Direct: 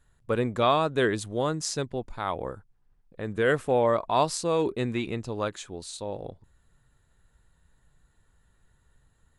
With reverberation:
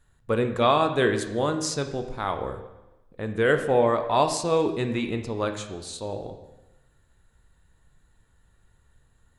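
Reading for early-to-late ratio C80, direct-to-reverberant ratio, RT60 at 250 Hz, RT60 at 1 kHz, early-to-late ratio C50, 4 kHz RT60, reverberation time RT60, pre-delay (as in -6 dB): 11.5 dB, 6.0 dB, 1.0 s, 1.0 s, 9.5 dB, 0.95 s, 1.0 s, 8 ms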